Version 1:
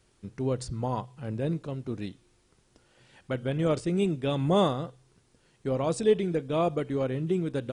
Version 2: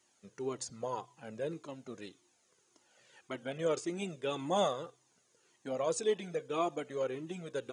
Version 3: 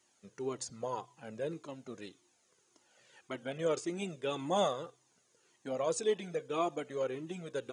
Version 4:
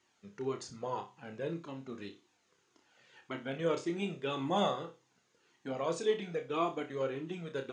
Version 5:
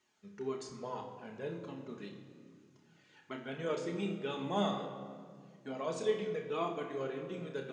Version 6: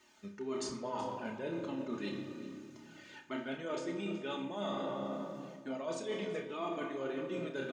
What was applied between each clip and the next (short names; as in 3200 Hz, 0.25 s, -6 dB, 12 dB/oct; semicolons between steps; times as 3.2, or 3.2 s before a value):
HPF 310 Hz 12 dB/oct; bell 6600 Hz +11.5 dB 0.25 oct; cascading flanger falling 1.8 Hz
nothing audible
LPF 4300 Hz 12 dB/oct; bell 590 Hz -6 dB 0.48 oct; on a send: flutter echo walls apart 5.1 m, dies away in 0.26 s; on the sum: gain +1.5 dB
reverb RT60 2.0 s, pre-delay 5 ms, DRR 4 dB; gain -4 dB
comb 3.3 ms, depth 53%; reverse; compressor 12:1, threshold -45 dBFS, peak gain reduction 19.5 dB; reverse; echo 0.374 s -16 dB; gain +10 dB